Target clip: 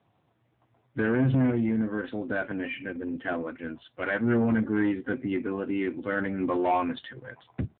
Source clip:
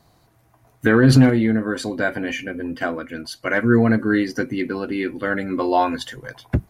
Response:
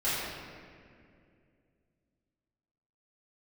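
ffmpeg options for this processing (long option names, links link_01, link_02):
-af "dynaudnorm=framelen=370:gausssize=7:maxgain=14dB,atempo=0.86,aresample=16000,asoftclip=type=tanh:threshold=-10.5dB,aresample=44100,volume=-7.5dB" -ar 8000 -c:a libopencore_amrnb -b:a 6700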